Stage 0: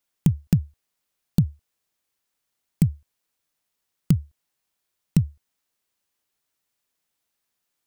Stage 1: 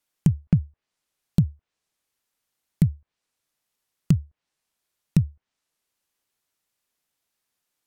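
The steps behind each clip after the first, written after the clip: low-pass that closes with the level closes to 660 Hz, closed at -21 dBFS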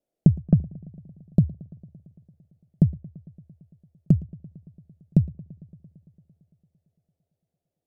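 gain riding; FFT filter 130 Hz 0 dB, 670 Hz +8 dB, 1 kHz -17 dB; filtered feedback delay 113 ms, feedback 78%, low-pass 3.3 kHz, level -22 dB; trim +3 dB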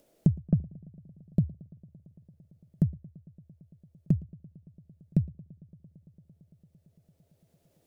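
upward compressor, threshold -39 dBFS; band-stop 740 Hz, Q 12; trim -6.5 dB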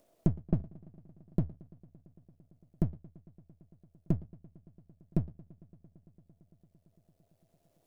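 partial rectifier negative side -12 dB; peaking EQ 670 Hz +8.5 dB 0.23 oct; trim -1.5 dB

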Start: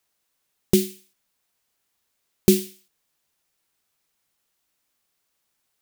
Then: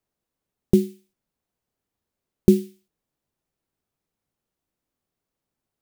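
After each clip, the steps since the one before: tilt shelf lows +9 dB, about 840 Hz; trim -5 dB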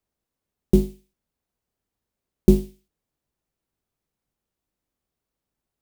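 octave divider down 2 oct, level -2 dB; trim -1 dB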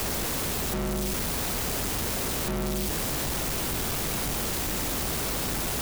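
one-bit comparator

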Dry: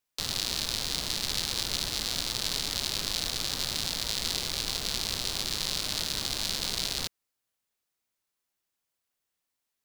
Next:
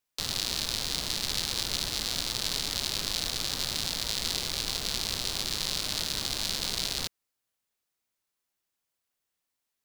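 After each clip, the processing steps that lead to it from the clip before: no audible change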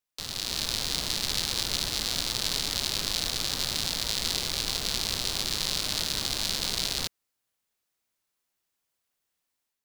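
level rider gain up to 7 dB; trim -4.5 dB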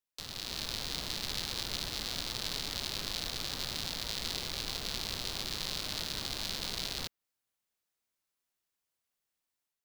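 dynamic bell 8.6 kHz, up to -6 dB, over -45 dBFS, Q 0.73; trim -5.5 dB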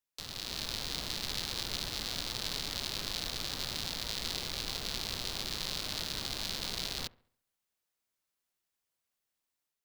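feedback echo behind a low-pass 69 ms, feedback 43%, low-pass 1.7 kHz, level -20 dB

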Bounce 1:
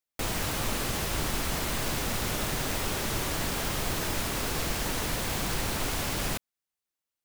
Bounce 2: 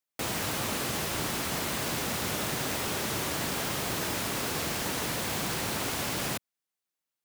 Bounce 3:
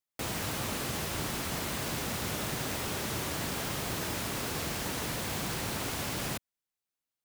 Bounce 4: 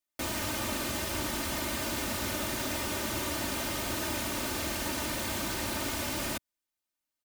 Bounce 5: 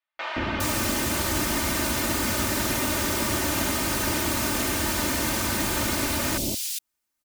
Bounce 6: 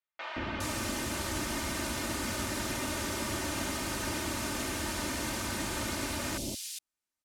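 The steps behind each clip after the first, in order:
high-pass 110 Hz 12 dB/octave
bass shelf 110 Hz +7.5 dB; trim -3.5 dB
comb 3.3 ms, depth 67%
three bands offset in time mids, lows, highs 170/410 ms, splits 620/3300 Hz; trim +8.5 dB
low-pass 11 kHz 12 dB/octave; trim -8 dB

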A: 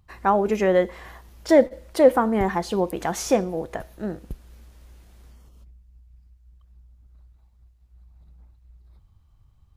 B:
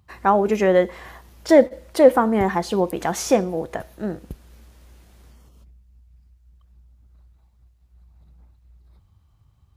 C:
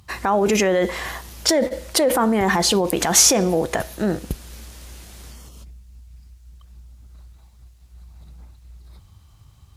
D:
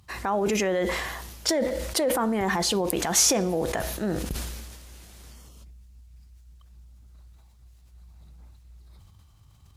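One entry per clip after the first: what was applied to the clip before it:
high-pass 61 Hz; trim +2.5 dB
in parallel at +2 dB: compressor with a negative ratio -23 dBFS, ratio -1; on the sum: peak limiter -9 dBFS, peak gain reduction 8.5 dB; peaking EQ 7.6 kHz +9.5 dB 3 oct; trim -2 dB
decay stretcher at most 36 dB/s; trim -7 dB

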